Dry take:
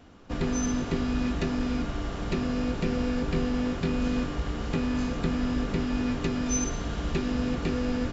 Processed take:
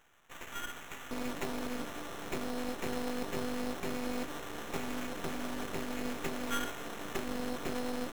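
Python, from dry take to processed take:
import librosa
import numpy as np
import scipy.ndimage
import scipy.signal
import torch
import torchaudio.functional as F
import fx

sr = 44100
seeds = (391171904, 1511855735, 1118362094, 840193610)

y = fx.highpass(x, sr, hz=fx.steps((0.0, 1300.0), (1.11, 330.0)), slope=12)
y = fx.sample_hold(y, sr, seeds[0], rate_hz=4700.0, jitter_pct=0)
y = np.maximum(y, 0.0)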